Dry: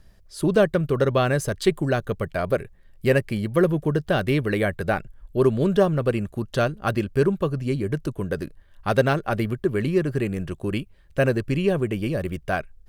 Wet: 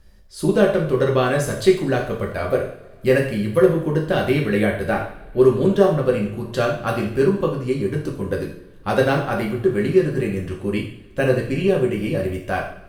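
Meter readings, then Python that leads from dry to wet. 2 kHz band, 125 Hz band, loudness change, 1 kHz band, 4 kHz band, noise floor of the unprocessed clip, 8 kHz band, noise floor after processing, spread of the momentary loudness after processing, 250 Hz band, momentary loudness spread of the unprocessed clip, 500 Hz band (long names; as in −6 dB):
+2.5 dB, +1.0 dB, +3.5 dB, +2.5 dB, +2.5 dB, −53 dBFS, can't be measured, −44 dBFS, 9 LU, +3.0 dB, 8 LU, +4.5 dB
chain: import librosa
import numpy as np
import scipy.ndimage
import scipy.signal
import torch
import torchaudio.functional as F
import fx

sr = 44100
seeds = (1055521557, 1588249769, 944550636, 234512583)

y = fx.rev_double_slope(x, sr, seeds[0], early_s=0.58, late_s=3.4, knee_db=-26, drr_db=-1.5)
y = F.gain(torch.from_numpy(y), -1.0).numpy()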